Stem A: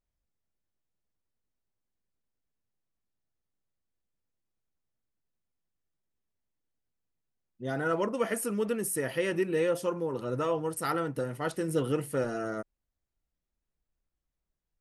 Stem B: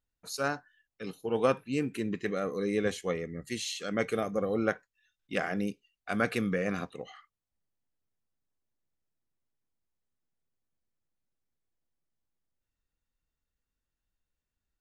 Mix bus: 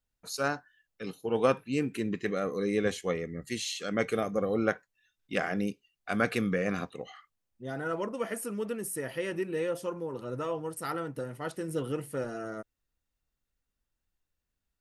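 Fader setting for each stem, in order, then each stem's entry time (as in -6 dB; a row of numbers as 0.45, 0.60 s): -4.0, +1.0 dB; 0.00, 0.00 s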